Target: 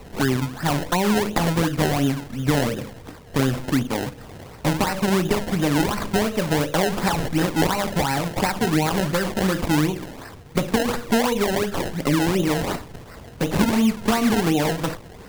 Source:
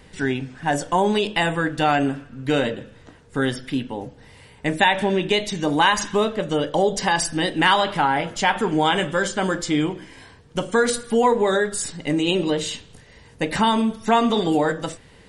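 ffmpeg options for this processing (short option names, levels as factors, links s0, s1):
-filter_complex "[0:a]acrossover=split=190[s0][s1];[s1]acompressor=threshold=0.0398:ratio=6[s2];[s0][s2]amix=inputs=2:normalize=0,acrusher=samples=26:mix=1:aa=0.000001:lfo=1:lforange=26:lforate=2.8,volume=2.37"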